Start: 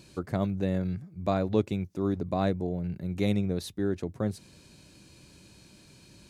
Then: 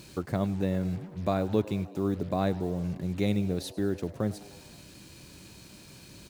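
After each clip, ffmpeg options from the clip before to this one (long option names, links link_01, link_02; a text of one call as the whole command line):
ffmpeg -i in.wav -filter_complex "[0:a]asplit=2[link_01][link_02];[link_02]acompressor=threshold=-37dB:ratio=4,volume=2dB[link_03];[link_01][link_03]amix=inputs=2:normalize=0,acrusher=bits=7:mix=0:aa=0.5,asplit=6[link_04][link_05][link_06][link_07][link_08][link_09];[link_05]adelay=102,afreqshift=96,volume=-19.5dB[link_10];[link_06]adelay=204,afreqshift=192,volume=-23.9dB[link_11];[link_07]adelay=306,afreqshift=288,volume=-28.4dB[link_12];[link_08]adelay=408,afreqshift=384,volume=-32.8dB[link_13];[link_09]adelay=510,afreqshift=480,volume=-37.2dB[link_14];[link_04][link_10][link_11][link_12][link_13][link_14]amix=inputs=6:normalize=0,volume=-3dB" out.wav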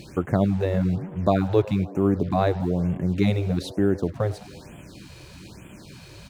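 ffmpeg -i in.wav -af "highshelf=frequency=5400:gain=-12,afftfilt=real='re*(1-between(b*sr/1024,210*pow(5000/210,0.5+0.5*sin(2*PI*1.1*pts/sr))/1.41,210*pow(5000/210,0.5+0.5*sin(2*PI*1.1*pts/sr))*1.41))':imag='im*(1-between(b*sr/1024,210*pow(5000/210,0.5+0.5*sin(2*PI*1.1*pts/sr))/1.41,210*pow(5000/210,0.5+0.5*sin(2*PI*1.1*pts/sr))*1.41))':win_size=1024:overlap=0.75,volume=8dB" out.wav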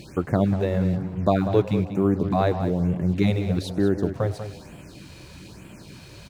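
ffmpeg -i in.wav -filter_complex "[0:a]asplit=2[link_01][link_02];[link_02]adelay=192.4,volume=-10dB,highshelf=frequency=4000:gain=-4.33[link_03];[link_01][link_03]amix=inputs=2:normalize=0" out.wav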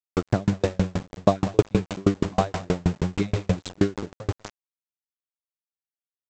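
ffmpeg -i in.wav -af "aresample=16000,aeval=exprs='val(0)*gte(abs(val(0)),0.0447)':channel_layout=same,aresample=44100,aeval=exprs='val(0)*pow(10,-37*if(lt(mod(6.3*n/s,1),2*abs(6.3)/1000),1-mod(6.3*n/s,1)/(2*abs(6.3)/1000),(mod(6.3*n/s,1)-2*abs(6.3)/1000)/(1-2*abs(6.3)/1000))/20)':channel_layout=same,volume=6.5dB" out.wav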